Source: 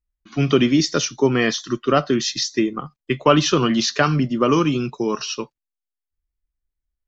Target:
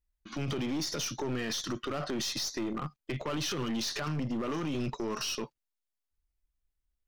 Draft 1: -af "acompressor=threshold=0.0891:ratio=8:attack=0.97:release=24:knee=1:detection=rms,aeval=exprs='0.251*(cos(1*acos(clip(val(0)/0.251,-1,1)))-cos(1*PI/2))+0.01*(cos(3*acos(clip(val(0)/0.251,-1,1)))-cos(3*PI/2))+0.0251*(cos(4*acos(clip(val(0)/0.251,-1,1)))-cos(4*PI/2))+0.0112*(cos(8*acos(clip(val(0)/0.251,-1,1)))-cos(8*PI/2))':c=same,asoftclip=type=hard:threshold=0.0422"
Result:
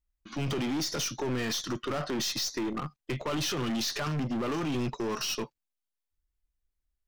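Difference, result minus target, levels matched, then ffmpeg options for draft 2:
compression: peak gain reduction -5.5 dB
-af "acompressor=threshold=0.0422:ratio=8:attack=0.97:release=24:knee=1:detection=rms,aeval=exprs='0.251*(cos(1*acos(clip(val(0)/0.251,-1,1)))-cos(1*PI/2))+0.01*(cos(3*acos(clip(val(0)/0.251,-1,1)))-cos(3*PI/2))+0.0251*(cos(4*acos(clip(val(0)/0.251,-1,1)))-cos(4*PI/2))+0.0112*(cos(8*acos(clip(val(0)/0.251,-1,1)))-cos(8*PI/2))':c=same,asoftclip=type=hard:threshold=0.0422"

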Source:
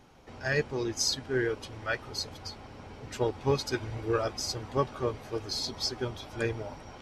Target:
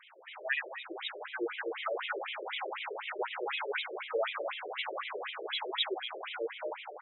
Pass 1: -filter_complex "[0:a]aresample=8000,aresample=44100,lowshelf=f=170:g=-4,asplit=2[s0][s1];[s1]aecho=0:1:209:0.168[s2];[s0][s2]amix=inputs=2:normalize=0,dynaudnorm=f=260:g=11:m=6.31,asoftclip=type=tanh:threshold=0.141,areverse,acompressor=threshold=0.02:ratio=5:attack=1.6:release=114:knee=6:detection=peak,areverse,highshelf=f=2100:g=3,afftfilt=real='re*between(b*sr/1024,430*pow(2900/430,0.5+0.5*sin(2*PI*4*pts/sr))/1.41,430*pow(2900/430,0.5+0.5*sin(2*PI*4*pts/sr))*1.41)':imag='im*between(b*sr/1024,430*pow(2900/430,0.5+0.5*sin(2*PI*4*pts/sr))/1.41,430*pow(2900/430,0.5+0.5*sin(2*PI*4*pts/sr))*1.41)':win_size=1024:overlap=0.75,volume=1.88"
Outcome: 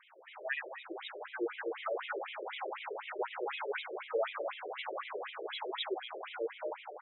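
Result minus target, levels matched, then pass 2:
4 kHz band -4.0 dB
-filter_complex "[0:a]aresample=8000,aresample=44100,lowshelf=f=170:g=-4,asplit=2[s0][s1];[s1]aecho=0:1:209:0.168[s2];[s0][s2]amix=inputs=2:normalize=0,dynaudnorm=f=260:g=11:m=6.31,asoftclip=type=tanh:threshold=0.141,areverse,acompressor=threshold=0.02:ratio=5:attack=1.6:release=114:knee=6:detection=peak,areverse,highshelf=f=2100:g=13,afftfilt=real='re*between(b*sr/1024,430*pow(2900/430,0.5+0.5*sin(2*PI*4*pts/sr))/1.41,430*pow(2900/430,0.5+0.5*sin(2*PI*4*pts/sr))*1.41)':imag='im*between(b*sr/1024,430*pow(2900/430,0.5+0.5*sin(2*PI*4*pts/sr))/1.41,430*pow(2900/430,0.5+0.5*sin(2*PI*4*pts/sr))*1.41)':win_size=1024:overlap=0.75,volume=1.88"

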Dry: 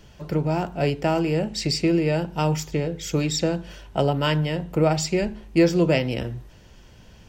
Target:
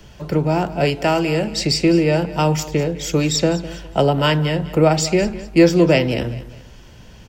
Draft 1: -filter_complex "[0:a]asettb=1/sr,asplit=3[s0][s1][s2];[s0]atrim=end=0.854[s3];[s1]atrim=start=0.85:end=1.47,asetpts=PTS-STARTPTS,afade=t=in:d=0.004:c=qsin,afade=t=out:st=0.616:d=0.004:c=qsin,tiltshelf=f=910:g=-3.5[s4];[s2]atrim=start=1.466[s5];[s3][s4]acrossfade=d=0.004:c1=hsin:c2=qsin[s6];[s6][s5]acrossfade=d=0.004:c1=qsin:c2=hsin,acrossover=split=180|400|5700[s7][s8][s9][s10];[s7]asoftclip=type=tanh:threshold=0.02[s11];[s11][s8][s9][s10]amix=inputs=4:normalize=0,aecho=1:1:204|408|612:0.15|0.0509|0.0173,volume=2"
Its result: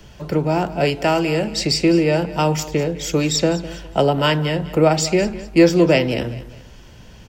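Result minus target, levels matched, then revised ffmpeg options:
saturation: distortion +7 dB
-filter_complex "[0:a]asettb=1/sr,asplit=3[s0][s1][s2];[s0]atrim=end=0.854[s3];[s1]atrim=start=0.85:end=1.47,asetpts=PTS-STARTPTS,afade=t=in:d=0.004:c=qsin,afade=t=out:st=0.616:d=0.004:c=qsin,tiltshelf=f=910:g=-3.5[s4];[s2]atrim=start=1.466[s5];[s3][s4]acrossfade=d=0.004:c1=hsin:c2=qsin[s6];[s6][s5]acrossfade=d=0.004:c1=qsin:c2=hsin,acrossover=split=180|400|5700[s7][s8][s9][s10];[s7]asoftclip=type=tanh:threshold=0.0447[s11];[s11][s8][s9][s10]amix=inputs=4:normalize=0,aecho=1:1:204|408|612:0.15|0.0509|0.0173,volume=2"

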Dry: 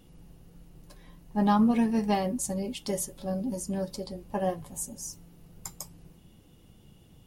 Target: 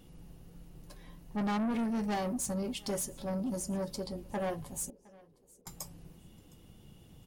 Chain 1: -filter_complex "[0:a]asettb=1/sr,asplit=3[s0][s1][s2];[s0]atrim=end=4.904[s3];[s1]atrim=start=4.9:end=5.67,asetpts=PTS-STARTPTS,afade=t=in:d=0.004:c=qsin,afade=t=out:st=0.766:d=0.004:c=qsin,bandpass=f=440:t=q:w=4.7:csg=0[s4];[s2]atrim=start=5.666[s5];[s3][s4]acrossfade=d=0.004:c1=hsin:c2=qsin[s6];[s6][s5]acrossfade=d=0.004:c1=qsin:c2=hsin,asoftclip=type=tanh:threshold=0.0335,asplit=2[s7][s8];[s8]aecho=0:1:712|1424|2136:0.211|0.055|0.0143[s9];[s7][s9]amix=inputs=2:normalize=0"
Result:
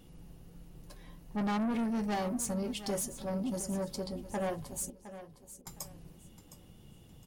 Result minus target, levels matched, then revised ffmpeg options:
echo-to-direct +10.5 dB
-filter_complex "[0:a]asettb=1/sr,asplit=3[s0][s1][s2];[s0]atrim=end=4.904[s3];[s1]atrim=start=4.9:end=5.67,asetpts=PTS-STARTPTS,afade=t=in:d=0.004:c=qsin,afade=t=out:st=0.766:d=0.004:c=qsin,bandpass=f=440:t=q:w=4.7:csg=0[s4];[s2]atrim=start=5.666[s5];[s3][s4]acrossfade=d=0.004:c1=hsin:c2=qsin[s6];[s6][s5]acrossfade=d=0.004:c1=qsin:c2=hsin,asoftclip=type=tanh:threshold=0.0335,asplit=2[s7][s8];[s8]aecho=0:1:712|1424:0.0631|0.0164[s9];[s7][s9]amix=inputs=2:normalize=0"

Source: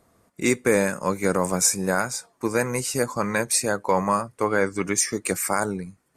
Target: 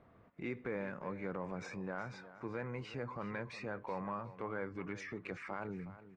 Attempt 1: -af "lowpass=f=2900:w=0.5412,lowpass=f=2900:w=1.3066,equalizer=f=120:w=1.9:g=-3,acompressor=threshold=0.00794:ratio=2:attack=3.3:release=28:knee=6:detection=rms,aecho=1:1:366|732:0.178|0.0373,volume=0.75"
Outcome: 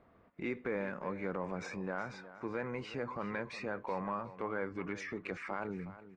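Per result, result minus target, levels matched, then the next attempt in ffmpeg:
compression: peak gain reduction -3.5 dB; 125 Hz band -3.5 dB
-af "lowpass=f=2900:w=0.5412,lowpass=f=2900:w=1.3066,equalizer=f=120:w=1.9:g=-3,acompressor=threshold=0.00355:ratio=2:attack=3.3:release=28:knee=6:detection=rms,aecho=1:1:366|732:0.178|0.0373,volume=0.75"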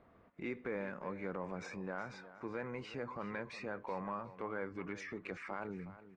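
125 Hz band -3.5 dB
-af "lowpass=f=2900:w=0.5412,lowpass=f=2900:w=1.3066,equalizer=f=120:w=1.9:g=4,acompressor=threshold=0.00355:ratio=2:attack=3.3:release=28:knee=6:detection=rms,aecho=1:1:366|732:0.178|0.0373,volume=0.75"

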